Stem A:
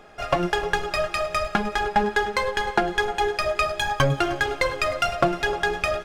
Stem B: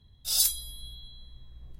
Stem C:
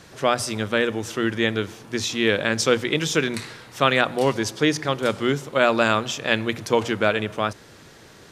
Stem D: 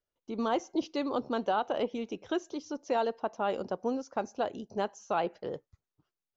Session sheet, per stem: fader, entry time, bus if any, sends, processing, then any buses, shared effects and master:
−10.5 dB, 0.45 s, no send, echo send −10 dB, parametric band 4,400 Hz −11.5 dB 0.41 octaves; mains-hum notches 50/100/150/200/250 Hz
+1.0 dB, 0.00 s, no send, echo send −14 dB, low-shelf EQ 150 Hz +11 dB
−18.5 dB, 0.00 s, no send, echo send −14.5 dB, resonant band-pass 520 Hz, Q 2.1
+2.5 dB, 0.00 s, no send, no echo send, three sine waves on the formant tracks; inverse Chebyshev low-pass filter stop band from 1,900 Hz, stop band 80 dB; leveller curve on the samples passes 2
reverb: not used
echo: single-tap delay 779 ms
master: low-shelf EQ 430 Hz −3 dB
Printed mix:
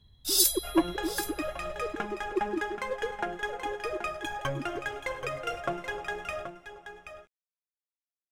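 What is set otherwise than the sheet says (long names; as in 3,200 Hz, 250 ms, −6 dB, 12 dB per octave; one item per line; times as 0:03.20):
stem B: missing low-shelf EQ 150 Hz +11 dB
stem C: muted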